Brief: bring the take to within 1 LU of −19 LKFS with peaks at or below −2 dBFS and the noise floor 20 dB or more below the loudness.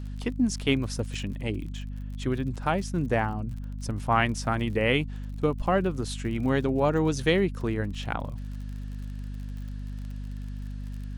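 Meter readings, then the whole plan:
crackle rate 45 per second; mains hum 50 Hz; hum harmonics up to 250 Hz; level of the hum −33 dBFS; integrated loudness −29.0 LKFS; sample peak −9.0 dBFS; target loudness −19.0 LKFS
→ click removal
mains-hum notches 50/100/150/200/250 Hz
level +10 dB
brickwall limiter −2 dBFS

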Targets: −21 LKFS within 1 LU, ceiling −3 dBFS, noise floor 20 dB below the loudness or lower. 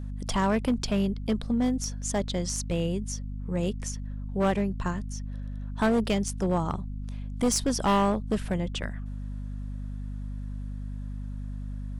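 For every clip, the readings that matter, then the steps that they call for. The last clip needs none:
share of clipped samples 1.3%; peaks flattened at −19.0 dBFS; mains hum 50 Hz; hum harmonics up to 250 Hz; level of the hum −32 dBFS; integrated loudness −29.5 LKFS; sample peak −19.0 dBFS; target loudness −21.0 LKFS
→ clipped peaks rebuilt −19 dBFS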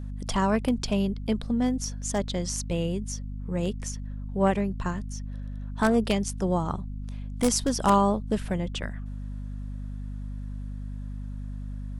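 share of clipped samples 0.0%; mains hum 50 Hz; hum harmonics up to 250 Hz; level of the hum −32 dBFS
→ mains-hum notches 50/100/150/200/250 Hz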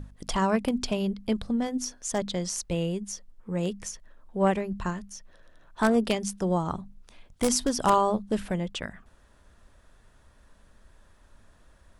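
mains hum none found; integrated loudness −28.5 LKFS; sample peak −9.0 dBFS; target loudness −21.0 LKFS
→ level +7.5 dB
brickwall limiter −3 dBFS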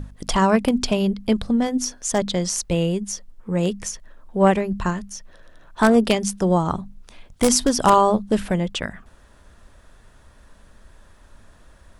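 integrated loudness −21.0 LKFS; sample peak −3.0 dBFS; background noise floor −51 dBFS

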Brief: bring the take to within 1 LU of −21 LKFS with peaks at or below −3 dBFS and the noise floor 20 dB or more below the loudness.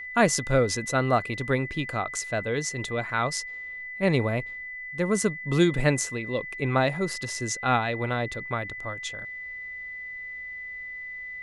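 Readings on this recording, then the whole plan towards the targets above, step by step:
interfering tone 2,000 Hz; level of the tone −35 dBFS; integrated loudness −27.5 LKFS; sample peak −7.5 dBFS; target loudness −21.0 LKFS
→ notch filter 2,000 Hz, Q 30
level +6.5 dB
brickwall limiter −3 dBFS

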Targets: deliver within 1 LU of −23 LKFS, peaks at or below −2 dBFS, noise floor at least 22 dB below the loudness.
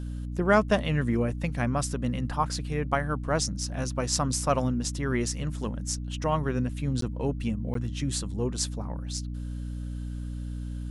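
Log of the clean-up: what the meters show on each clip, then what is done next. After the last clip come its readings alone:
number of dropouts 2; longest dropout 13 ms; mains hum 60 Hz; hum harmonics up to 300 Hz; level of the hum −31 dBFS; integrated loudness −29.0 LKFS; sample peak −9.0 dBFS; target loudness −23.0 LKFS
→ repair the gap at 0:07.01/0:07.74, 13 ms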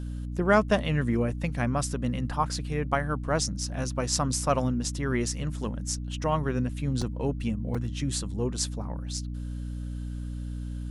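number of dropouts 0; mains hum 60 Hz; hum harmonics up to 300 Hz; level of the hum −31 dBFS
→ mains-hum notches 60/120/180/240/300 Hz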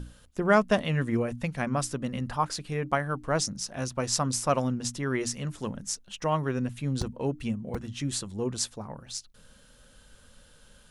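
mains hum none found; integrated loudness −29.5 LKFS; sample peak −9.5 dBFS; target loudness −23.0 LKFS
→ level +6.5 dB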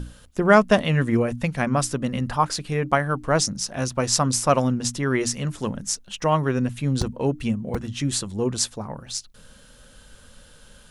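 integrated loudness −23.0 LKFS; sample peak −3.0 dBFS; background noise floor −50 dBFS

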